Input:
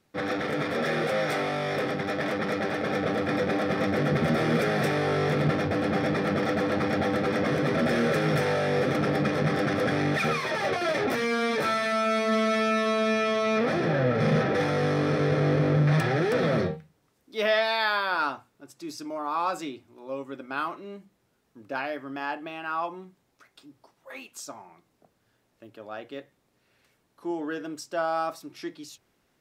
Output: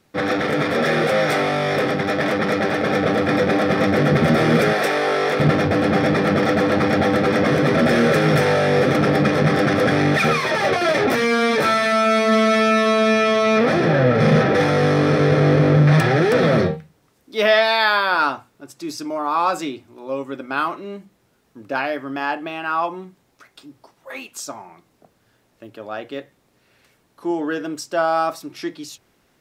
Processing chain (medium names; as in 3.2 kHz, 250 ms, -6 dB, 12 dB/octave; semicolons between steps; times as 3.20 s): 4.73–5.40 s: high-pass 400 Hz 12 dB/octave; trim +8.5 dB